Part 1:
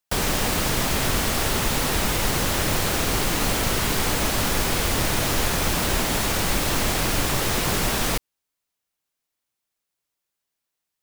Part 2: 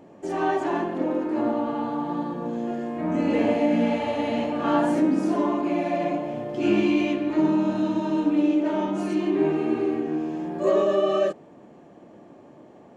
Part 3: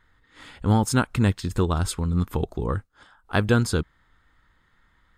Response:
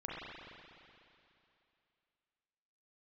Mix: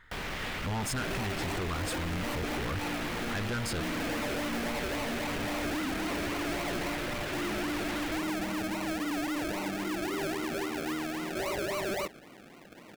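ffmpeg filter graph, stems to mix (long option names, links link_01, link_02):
-filter_complex "[0:a]alimiter=limit=-19.5dB:level=0:latency=1,acrossover=split=4500[link_01][link_02];[link_02]acompressor=threshold=-44dB:ratio=4:attack=1:release=60[link_03];[link_01][link_03]amix=inputs=2:normalize=0,volume=-9dB,asplit=2[link_04][link_05];[link_05]volume=-7dB[link_06];[1:a]acrusher=samples=36:mix=1:aa=0.000001:lfo=1:lforange=21.6:lforate=3.7,adelay=750,volume=-4dB[link_07];[2:a]asoftclip=type=tanh:threshold=-21dB,volume=2dB[link_08];[link_07][link_08]amix=inputs=2:normalize=0,alimiter=limit=-23.5dB:level=0:latency=1:release=35,volume=0dB[link_09];[3:a]atrim=start_sample=2205[link_10];[link_06][link_10]afir=irnorm=-1:irlink=0[link_11];[link_04][link_09][link_11]amix=inputs=3:normalize=0,equalizer=frequency=2100:width=1:gain=6.5,asoftclip=type=tanh:threshold=-29.5dB"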